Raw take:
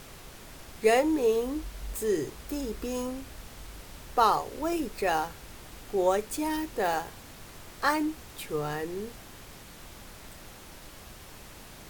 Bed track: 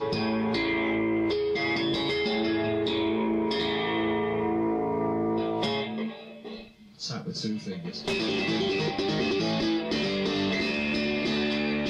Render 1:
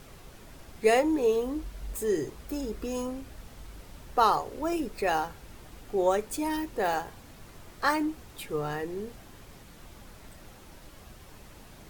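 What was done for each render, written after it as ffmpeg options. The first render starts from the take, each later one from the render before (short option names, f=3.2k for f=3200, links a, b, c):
-af "afftdn=nr=6:nf=-48"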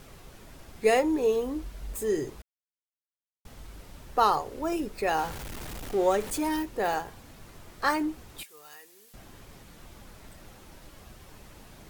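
-filter_complex "[0:a]asettb=1/sr,asplit=3[a][b][c];[a]atrim=end=5.184[d];[b]atrim=start=5.18:end=6.63,asetpts=PTS-STARTPTS,afade=t=in:d=0.004:c=qsin,afade=t=out:st=1.446:d=0.004:c=qsin,aeval=exprs='val(0)+0.5*0.0168*sgn(val(0))':c=same[e];[c]atrim=start=6.626[f];[d][e]acrossfade=d=0.004:c1=hsin:c2=qsin[g];[g][f]acrossfade=d=0.004:c1=qsin:c2=hsin,asettb=1/sr,asplit=3[h][i][j];[h]atrim=end=8.434[k];[i]atrim=start=8.43:end=9.14,asetpts=PTS-STARTPTS,afade=t=in:d=0.004:c=qsin,afade=t=out:st=0.706:d=0.004:c=qsin,aderivative[l];[j]atrim=start=9.136[m];[k][l]acrossfade=d=0.004:c1=hsin:c2=qsin[n];[n][m]acrossfade=d=0.004:c1=qsin:c2=hsin,asplit=3[o][p][q];[o]atrim=end=2.42,asetpts=PTS-STARTPTS,afade=t=out:st=2.416:d=0.004:c=hsin[r];[p]atrim=start=2.42:end=3.45,asetpts=PTS-STARTPTS,volume=0[s];[q]atrim=start=3.45,asetpts=PTS-STARTPTS,afade=t=in:d=0.004:c=hsin[t];[r][s][t]concat=n=3:v=0:a=1"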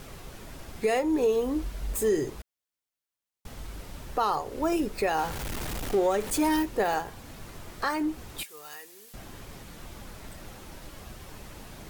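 -af "acontrast=32,alimiter=limit=-16.5dB:level=0:latency=1:release=353"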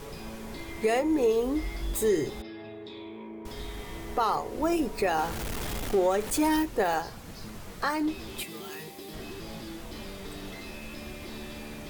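-filter_complex "[1:a]volume=-15.5dB[a];[0:a][a]amix=inputs=2:normalize=0"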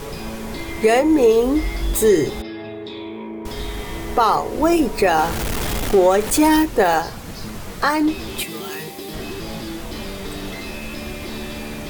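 -af "volume=10.5dB"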